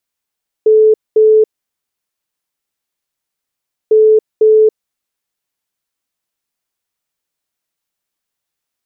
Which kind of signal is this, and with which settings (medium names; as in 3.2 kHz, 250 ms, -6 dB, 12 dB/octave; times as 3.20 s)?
beep pattern sine 434 Hz, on 0.28 s, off 0.22 s, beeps 2, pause 2.47 s, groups 2, -4.5 dBFS